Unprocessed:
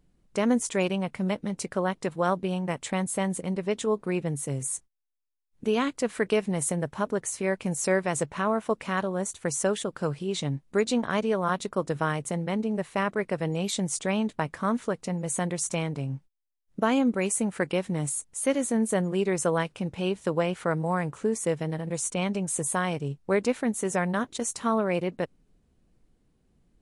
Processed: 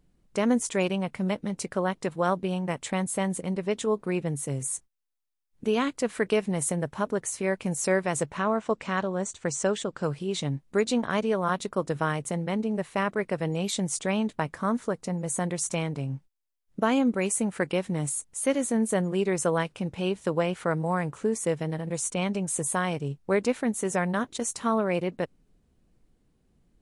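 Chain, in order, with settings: 8.37–10.04 s: steep low-pass 8.4 kHz 48 dB/octave; 14.49–15.44 s: dynamic bell 2.8 kHz, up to -6 dB, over -50 dBFS, Q 1.5

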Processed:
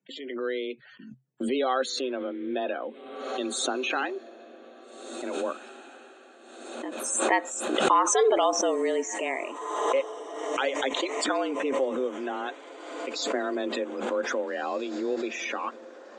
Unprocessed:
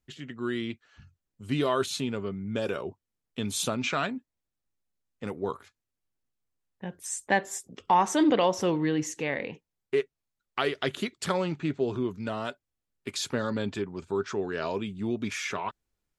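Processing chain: gate -54 dBFS, range -38 dB; loudest bins only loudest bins 64; frequency shift +130 Hz; on a send: echo that smears into a reverb 1780 ms, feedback 46%, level -16 dB; on the sum: swell ahead of each attack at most 42 dB/s

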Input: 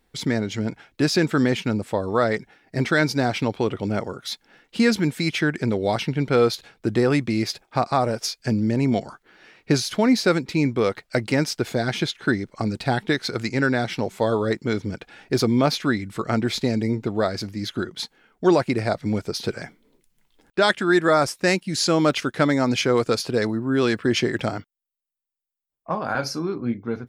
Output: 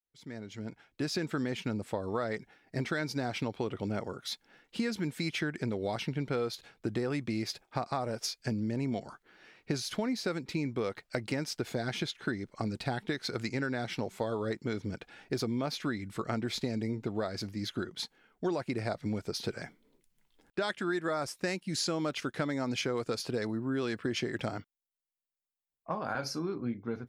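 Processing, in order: fade-in on the opening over 1.54 s; compression, threshold -22 dBFS, peak gain reduction 9.5 dB; trim -7 dB

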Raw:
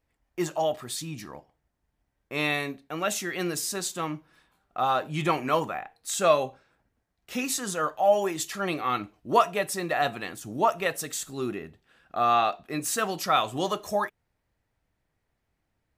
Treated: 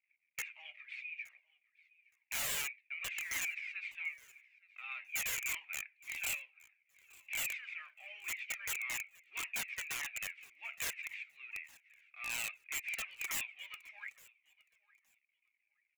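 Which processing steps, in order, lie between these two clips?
CVSD coder 64 kbps; Butterworth band-pass 2.3 kHz, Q 6; integer overflow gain 40 dB; on a send: feedback delay 868 ms, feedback 19%, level -23 dB; on the sum: Shepard-style flanger falling 1.8 Hz; trim +13 dB

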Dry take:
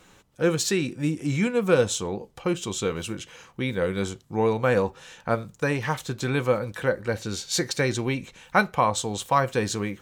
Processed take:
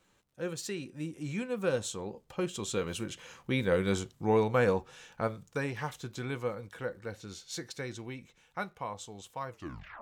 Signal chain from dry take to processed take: tape stop on the ending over 0.58 s; Doppler pass-by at 3.82 s, 11 m/s, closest 9.9 m; crackle 90 per s -60 dBFS; trim -2 dB

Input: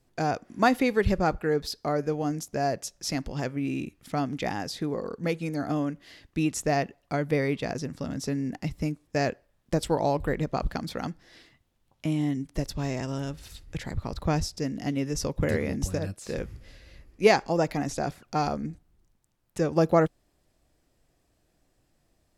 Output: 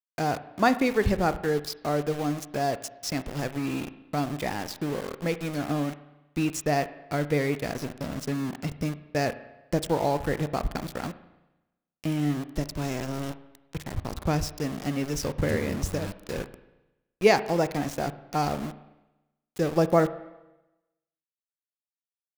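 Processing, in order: small samples zeroed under -33.5 dBFS; spring tank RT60 1 s, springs 34/47 ms, chirp 70 ms, DRR 13 dB

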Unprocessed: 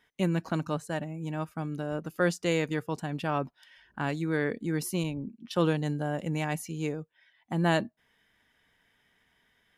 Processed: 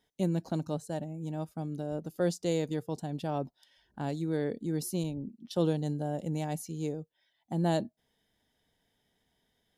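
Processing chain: high-order bell 1.7 kHz -11.5 dB; trim -2 dB

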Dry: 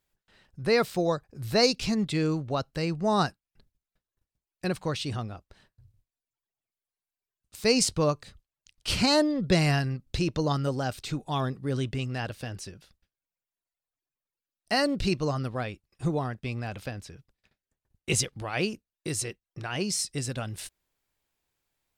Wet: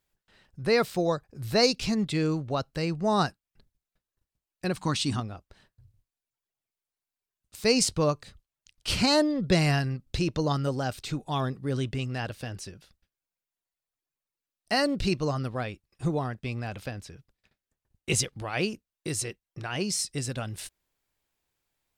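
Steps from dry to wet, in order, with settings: 4.77–5.20 s: graphic EQ 250/500/1000/4000/8000 Hz +11/-10/+7/+3/+9 dB

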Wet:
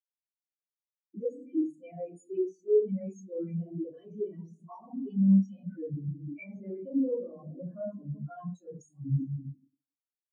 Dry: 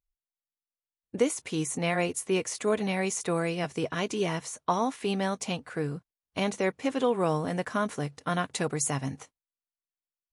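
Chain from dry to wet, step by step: 5.63–6.50 s: resonant high shelf 2.9 kHz -9.5 dB, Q 3; delay 336 ms -16 dB; reverberation RT60 1.0 s, pre-delay 3 ms, DRR -7.5 dB; saturation -18 dBFS, distortion -10 dB; peak limiter -28 dBFS, peak gain reduction 10 dB; peaking EQ 7 kHz +11 dB 2.7 oct; compression 20:1, threshold -30 dBFS, peak gain reduction 8.5 dB; spectral contrast expander 4:1; trim +6 dB

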